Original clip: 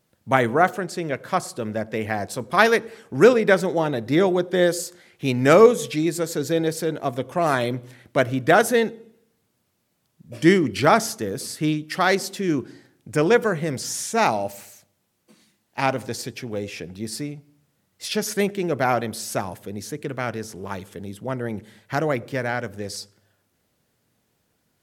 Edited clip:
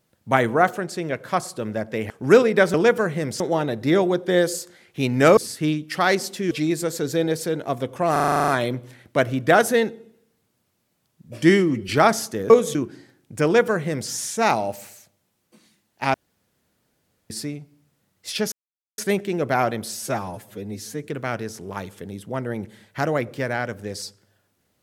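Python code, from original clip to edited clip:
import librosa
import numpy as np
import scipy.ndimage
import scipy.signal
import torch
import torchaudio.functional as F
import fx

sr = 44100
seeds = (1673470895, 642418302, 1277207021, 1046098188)

y = fx.edit(x, sr, fx.cut(start_s=2.1, length_s=0.91),
    fx.swap(start_s=5.62, length_s=0.25, other_s=11.37, other_length_s=1.14),
    fx.stutter(start_s=7.48, slice_s=0.04, count=10),
    fx.stretch_span(start_s=10.5, length_s=0.26, factor=1.5),
    fx.duplicate(start_s=13.2, length_s=0.66, to_s=3.65),
    fx.room_tone_fill(start_s=15.9, length_s=1.16),
    fx.insert_silence(at_s=18.28, length_s=0.46),
    fx.stretch_span(start_s=19.27, length_s=0.71, factor=1.5), tone=tone)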